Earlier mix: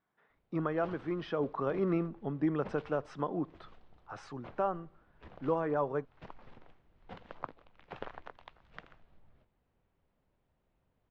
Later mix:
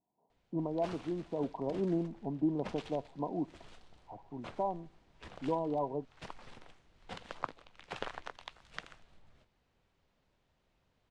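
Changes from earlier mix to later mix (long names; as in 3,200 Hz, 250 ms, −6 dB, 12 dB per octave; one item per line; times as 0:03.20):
speech: add Chebyshev low-pass with heavy ripple 1,000 Hz, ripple 6 dB
master: remove head-to-tape spacing loss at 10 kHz 32 dB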